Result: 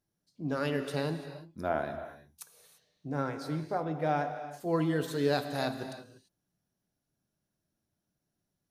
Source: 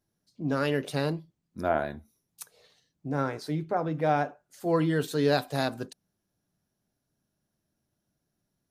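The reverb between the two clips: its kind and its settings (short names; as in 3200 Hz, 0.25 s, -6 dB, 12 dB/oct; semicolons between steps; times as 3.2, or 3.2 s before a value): non-linear reverb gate 0.37 s flat, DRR 8 dB; gain -4.5 dB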